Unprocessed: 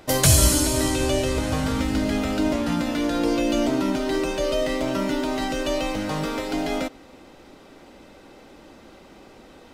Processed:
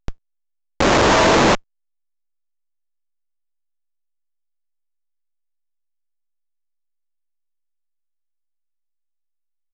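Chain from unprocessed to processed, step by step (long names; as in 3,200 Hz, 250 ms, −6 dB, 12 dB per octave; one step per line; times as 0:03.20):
full-wave rectification
ambience of single reflections 12 ms −18 dB, 48 ms −5.5 dB, 69 ms −15 dB
0:00.80–0:01.55: mid-hump overdrive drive 27 dB, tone 1,400 Hz, clips at −8 dBFS
high-frequency loss of the air 210 metres
comparator with hysteresis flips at −24.5 dBFS
level +7.5 dB
A-law companding 128 kbit/s 16,000 Hz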